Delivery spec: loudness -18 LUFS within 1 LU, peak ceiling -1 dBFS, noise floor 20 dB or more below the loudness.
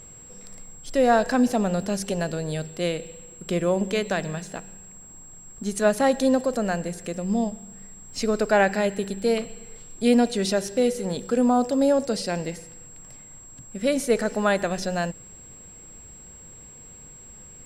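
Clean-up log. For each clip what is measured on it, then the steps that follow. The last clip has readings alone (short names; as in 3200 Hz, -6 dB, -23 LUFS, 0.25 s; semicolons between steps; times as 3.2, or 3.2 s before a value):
steady tone 7600 Hz; tone level -44 dBFS; loudness -24.0 LUFS; peak -8.0 dBFS; loudness target -18.0 LUFS
-> notch 7600 Hz, Q 30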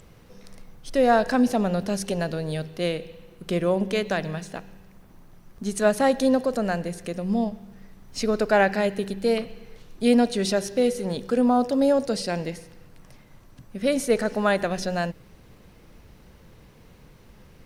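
steady tone none; loudness -24.0 LUFS; peak -8.0 dBFS; loudness target -18.0 LUFS
-> gain +6 dB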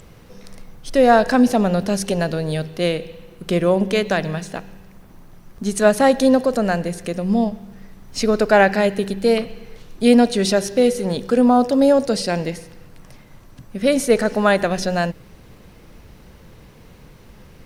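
loudness -18.0 LUFS; peak -2.0 dBFS; noise floor -46 dBFS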